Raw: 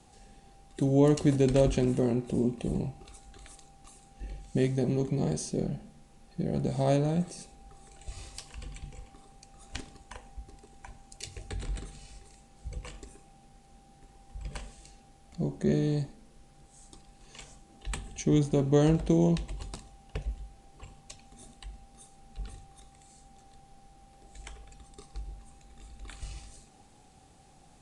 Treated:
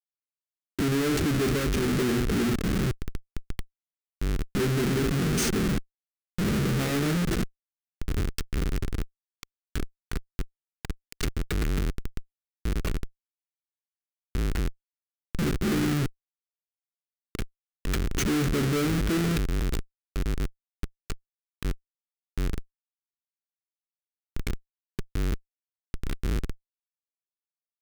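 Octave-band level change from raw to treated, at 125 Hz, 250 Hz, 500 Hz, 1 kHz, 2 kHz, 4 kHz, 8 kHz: +2.0 dB, +2.0 dB, -1.0 dB, +4.0 dB, +12.5 dB, +9.5 dB, +7.0 dB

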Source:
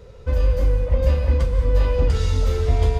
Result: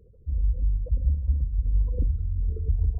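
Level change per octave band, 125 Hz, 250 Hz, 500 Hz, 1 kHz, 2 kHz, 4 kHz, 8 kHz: -6.5 dB, -12.0 dB, -23.0 dB, under -30 dB, under -40 dB, under -40 dB, no reading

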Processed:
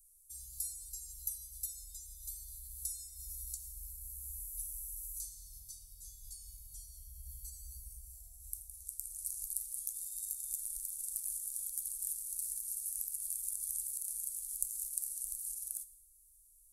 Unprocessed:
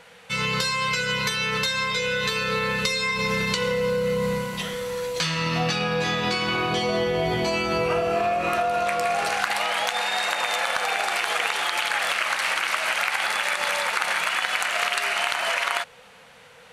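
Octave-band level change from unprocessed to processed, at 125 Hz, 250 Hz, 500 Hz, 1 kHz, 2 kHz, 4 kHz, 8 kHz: under -20 dB, under -40 dB, under -40 dB, under -40 dB, under -40 dB, -34.5 dB, -3.5 dB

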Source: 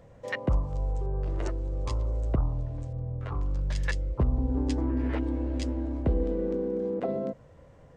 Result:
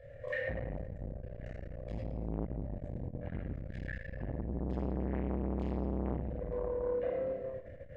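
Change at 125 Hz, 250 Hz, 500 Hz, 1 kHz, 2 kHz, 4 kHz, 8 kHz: -9.0 dB, -7.5 dB, -4.0 dB, -6.5 dB, -4.5 dB, under -15 dB, no reading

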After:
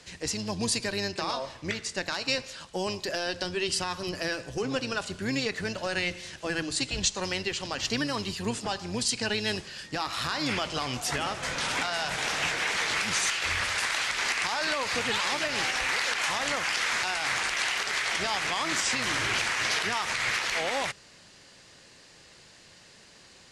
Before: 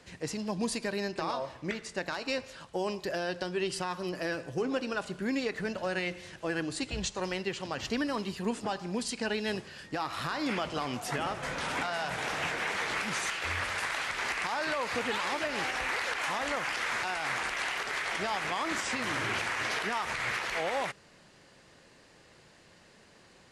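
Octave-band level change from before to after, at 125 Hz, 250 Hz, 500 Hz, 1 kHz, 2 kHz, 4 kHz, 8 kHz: +3.0 dB, +0.5 dB, +0.5 dB, +1.5 dB, +4.0 dB, +8.0 dB, +9.5 dB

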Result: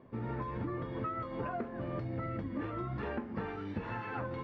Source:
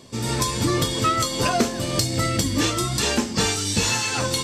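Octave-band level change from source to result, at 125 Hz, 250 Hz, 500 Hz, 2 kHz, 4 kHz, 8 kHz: -13.5 dB, -13.5 dB, -13.5 dB, -17.5 dB, -36.5 dB, under -40 dB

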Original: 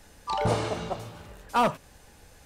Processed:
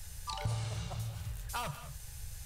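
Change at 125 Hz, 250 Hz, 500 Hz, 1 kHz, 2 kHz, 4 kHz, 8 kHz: -2.0 dB, -16.0 dB, -19.5 dB, -15.0 dB, -10.5 dB, -6.0 dB, 0.0 dB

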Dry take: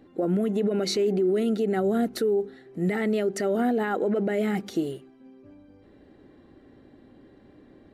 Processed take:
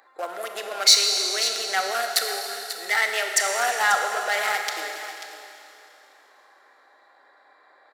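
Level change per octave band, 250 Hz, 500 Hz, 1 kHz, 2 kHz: -24.5 dB, -7.0 dB, +8.5 dB, +13.5 dB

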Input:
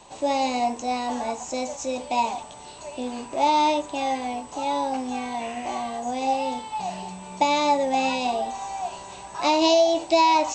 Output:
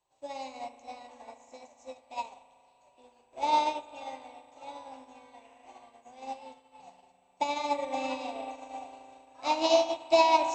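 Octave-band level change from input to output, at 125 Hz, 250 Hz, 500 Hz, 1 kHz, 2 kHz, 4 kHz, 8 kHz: no reading, -13.5 dB, -7.0 dB, -8.0 dB, -8.5 dB, -8.0 dB, -11.5 dB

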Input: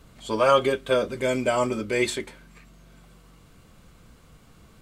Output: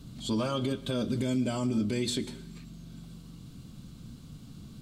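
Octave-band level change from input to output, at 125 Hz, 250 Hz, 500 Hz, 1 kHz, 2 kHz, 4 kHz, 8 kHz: +3.5 dB, +1.5 dB, -12.0 dB, -15.0 dB, -14.5 dB, -3.5 dB, -4.0 dB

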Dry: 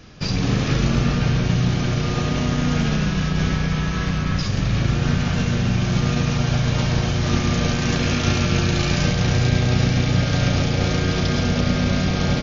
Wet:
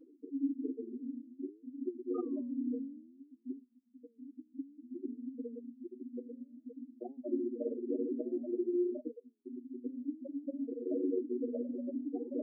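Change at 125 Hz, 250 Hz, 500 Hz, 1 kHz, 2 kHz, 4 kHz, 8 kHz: under -40 dB, -15.0 dB, -11.5 dB, -32.5 dB, under -40 dB, under -40 dB, no reading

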